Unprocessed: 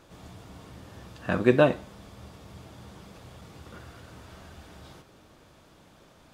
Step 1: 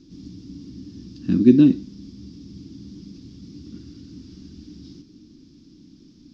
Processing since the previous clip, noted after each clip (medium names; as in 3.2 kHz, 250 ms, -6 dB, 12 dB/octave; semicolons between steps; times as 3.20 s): FFT filter 120 Hz 0 dB, 290 Hz +14 dB, 590 Hz -27 dB, 1.5 kHz -20 dB, 3.5 kHz -6 dB, 5.3 kHz +8 dB, 8.9 kHz -24 dB; trim +2.5 dB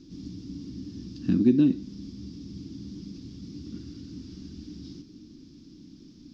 compression 2:1, threshold -22 dBFS, peak gain reduction 8.5 dB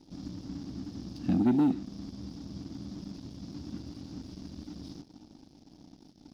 waveshaping leveller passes 2; trim -8.5 dB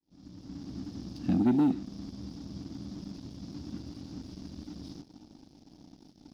fade-in on the opening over 0.77 s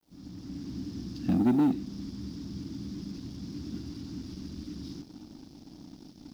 companding laws mixed up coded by mu